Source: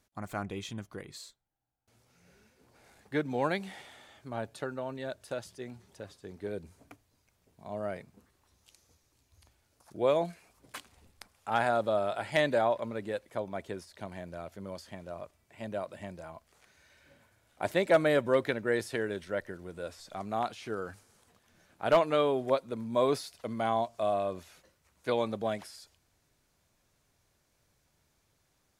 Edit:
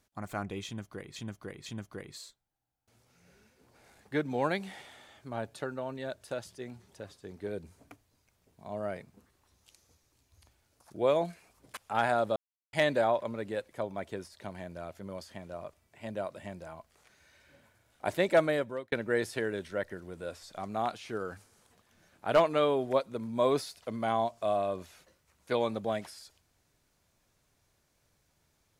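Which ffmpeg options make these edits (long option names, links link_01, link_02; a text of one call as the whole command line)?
ffmpeg -i in.wav -filter_complex "[0:a]asplit=7[link_01][link_02][link_03][link_04][link_05][link_06][link_07];[link_01]atrim=end=1.162[link_08];[link_02]atrim=start=0.658:end=1.162[link_09];[link_03]atrim=start=0.658:end=10.772[link_10];[link_04]atrim=start=11.338:end=11.93,asetpts=PTS-STARTPTS,afade=type=out:start_time=0.588:duration=0.004:curve=hsin[link_11];[link_05]atrim=start=11.93:end=12.3,asetpts=PTS-STARTPTS,volume=0[link_12];[link_06]atrim=start=12.3:end=18.49,asetpts=PTS-STARTPTS,afade=type=in:duration=0.004:curve=hsin,afade=type=out:start_time=5.62:duration=0.57[link_13];[link_07]atrim=start=18.49,asetpts=PTS-STARTPTS,afade=type=in:duration=0.004:curve=hsin[link_14];[link_08][link_09]acrossfade=duration=0.004:curve1=hsin:curve2=hsin[link_15];[link_15][link_10]acrossfade=duration=0.004:curve1=hsin:curve2=hsin[link_16];[link_11][link_12][link_13][link_14]concat=n=4:v=0:a=1[link_17];[link_16][link_17]acrossfade=duration=0.004:curve1=hsin:curve2=hsin" out.wav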